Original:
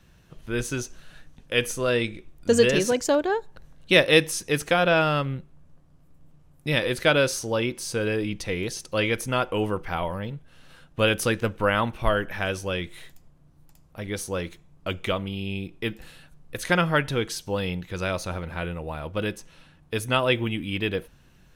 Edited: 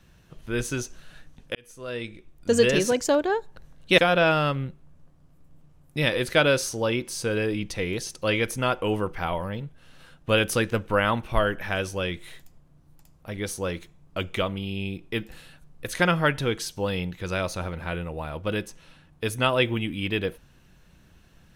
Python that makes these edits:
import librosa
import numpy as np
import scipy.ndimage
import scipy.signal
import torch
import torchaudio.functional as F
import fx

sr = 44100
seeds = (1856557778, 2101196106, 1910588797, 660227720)

y = fx.edit(x, sr, fx.fade_in_span(start_s=1.55, length_s=1.18),
    fx.cut(start_s=3.98, length_s=0.7), tone=tone)